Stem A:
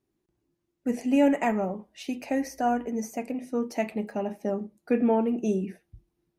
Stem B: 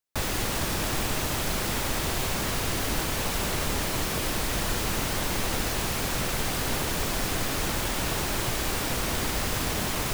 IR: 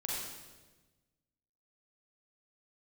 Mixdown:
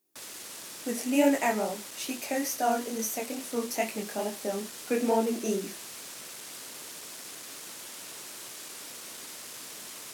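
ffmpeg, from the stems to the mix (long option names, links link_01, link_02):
-filter_complex "[0:a]flanger=delay=17.5:depth=7.3:speed=2.3,volume=2.5dB[link_01];[1:a]asoftclip=type=hard:threshold=-23.5dB,lowpass=9000,equalizer=frequency=780:width_type=o:width=0.25:gain=-4,volume=-17dB[link_02];[link_01][link_02]amix=inputs=2:normalize=0,highpass=260,aemphasis=mode=production:type=75fm"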